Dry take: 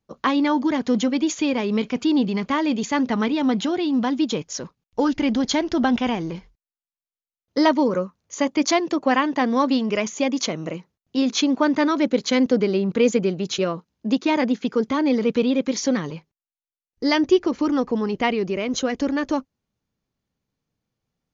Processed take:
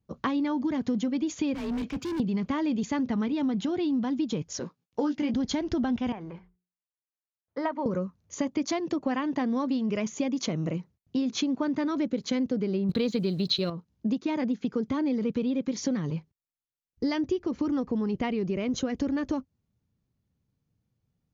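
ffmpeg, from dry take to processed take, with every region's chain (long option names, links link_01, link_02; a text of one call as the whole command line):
ffmpeg -i in.wav -filter_complex "[0:a]asettb=1/sr,asplit=3[link_01][link_02][link_03];[link_01]atrim=end=1.544[link_04];[link_02]atrim=start=1.54:end=2.2,asetpts=PTS-STARTPTS,afade=type=in:duration=0.004:curve=qsin,afade=type=out:start_time=0.656:duration=0.004:curve=qsin,equalizer=frequency=380:width_type=o:width=1.7:gain=-3,afreqshift=32,asoftclip=type=hard:threshold=-28.5dB[link_05];[link_03]atrim=start=2.196[link_06];[link_04][link_05]acrossfade=duration=0.004:curve1=hsin:curve2=qsin[link_07];[link_07][link_06]acrossfade=duration=0.004:curve1=qsin:curve2=hsin,asettb=1/sr,asplit=3[link_08][link_09][link_10];[link_08]atrim=end=4.594[link_11];[link_09]atrim=start=4.59:end=5.34,asetpts=PTS-STARTPTS,afade=type=in:duration=0.004:curve=qsin,afade=type=out:start_time=0.746:duration=0.004:curve=qsin,highpass=260,asplit=2[link_12][link_13];[link_13]adelay=17,volume=-5dB[link_14];[link_12][link_14]amix=inputs=2:normalize=0,atrim=end_sample=33075[link_15];[link_10]atrim=start=5.336[link_16];[link_11][link_15]acrossfade=duration=0.004:curve1=hsin:curve2=qsin[link_17];[link_17][link_16]acrossfade=duration=0.004:curve1=qsin:curve2=hsin,asettb=1/sr,asplit=3[link_18][link_19][link_20];[link_18]atrim=end=6.124[link_21];[link_19]atrim=start=6.12:end=7.86,asetpts=PTS-STARTPTS,afade=type=in:duration=0.004:curve=qsin,afade=type=out:start_time=1.736:duration=0.004:curve=qsin,acrossover=split=580 2200:gain=0.178 1 0.0891[link_22][link_23][link_24];[link_22][link_23][link_24]amix=inputs=3:normalize=0,bandreject=frequency=60:width_type=h:width=6,bandreject=frequency=120:width_type=h:width=6,bandreject=frequency=180:width_type=h:width=6,bandreject=frequency=240:width_type=h:width=6,bandreject=frequency=300:width_type=h:width=6,bandreject=frequency=360:width_type=h:width=6,bandreject=frequency=420:width_type=h:width=6[link_25];[link_20]atrim=start=7.856[link_26];[link_21][link_25]acrossfade=duration=0.004:curve1=hsin:curve2=qsin[link_27];[link_27][link_26]acrossfade=duration=0.004:curve1=qsin:curve2=hsin,asettb=1/sr,asplit=3[link_28][link_29][link_30];[link_28]atrim=end=12.894[link_31];[link_29]atrim=start=12.89:end=13.7,asetpts=PTS-STARTPTS,afade=type=in:duration=0.004:curve=qsin,afade=type=out:start_time=0.806:duration=0.004:curve=qsin,acontrast=72,lowpass=frequency=4100:width_type=q:width=10,acrusher=bits=6:mix=0:aa=0.5[link_32];[link_30]atrim=start=13.696[link_33];[link_31][link_32]acrossfade=duration=0.004:curve1=hsin:curve2=qsin[link_34];[link_34][link_33]acrossfade=duration=0.004:curve1=qsin:curve2=hsin,equalizer=frequency=94:width=0.42:gain=14.5,acompressor=threshold=-19dB:ratio=6,volume=-6dB" out.wav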